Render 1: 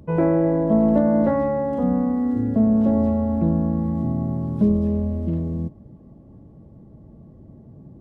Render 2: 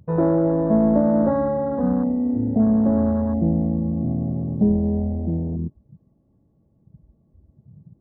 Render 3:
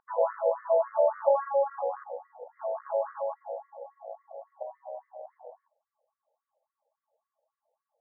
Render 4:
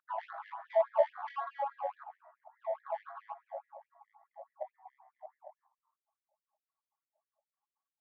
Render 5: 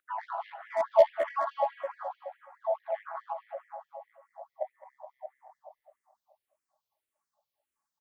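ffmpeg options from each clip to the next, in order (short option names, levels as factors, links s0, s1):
-af "afwtdn=0.0447"
-af "afftfilt=real='re*between(b*sr/1024,650*pow(1600/650,0.5+0.5*sin(2*PI*3.6*pts/sr))/1.41,650*pow(1600/650,0.5+0.5*sin(2*PI*3.6*pts/sr))*1.41)':imag='im*between(b*sr/1024,650*pow(1600/650,0.5+0.5*sin(2*PI*3.6*pts/sr))/1.41,650*pow(1600/650,0.5+0.5*sin(2*PI*3.6*pts/sr))*1.41)':win_size=1024:overlap=0.75,volume=1.19"
-filter_complex "[0:a]adynamicsmooth=sensitivity=1:basefreq=1600,asplit=4[s0][s1][s2][s3];[s1]adelay=134,afreqshift=140,volume=0.075[s4];[s2]adelay=268,afreqshift=280,volume=0.0351[s5];[s3]adelay=402,afreqshift=420,volume=0.0166[s6];[s0][s4][s5][s6]amix=inputs=4:normalize=0,afftfilt=real='re*gte(b*sr/1024,540*pow(1700/540,0.5+0.5*sin(2*PI*4.7*pts/sr)))':imag='im*gte(b*sr/1024,540*pow(1700/540,0.5+0.5*sin(2*PI*4.7*pts/sr)))':win_size=1024:overlap=0.75"
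-filter_complex "[0:a]asoftclip=type=hard:threshold=0.0944,asplit=2[s0][s1];[s1]aecho=0:1:211|422|633|844|1055|1266:0.473|0.246|0.128|0.0665|0.0346|0.018[s2];[s0][s2]amix=inputs=2:normalize=0,asplit=2[s3][s4];[s4]afreqshift=-1.7[s5];[s3][s5]amix=inputs=2:normalize=1,volume=2.24"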